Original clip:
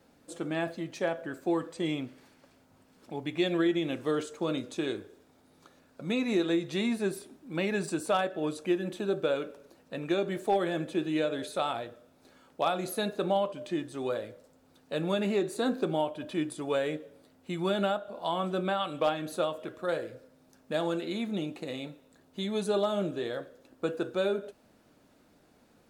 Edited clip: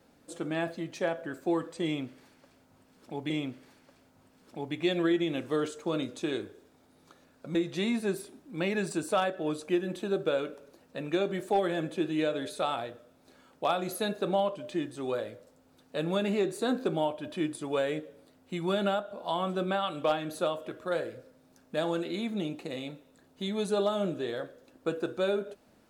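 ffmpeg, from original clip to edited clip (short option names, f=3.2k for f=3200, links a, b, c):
-filter_complex "[0:a]asplit=3[a][b][c];[a]atrim=end=3.302[d];[b]atrim=start=1.848:end=6.102[e];[c]atrim=start=6.518[f];[d][e]acrossfade=d=0.004:c1=hsin:c2=hsin[g];[g][f]acrossfade=d=0.004:c1=hsin:c2=hsin"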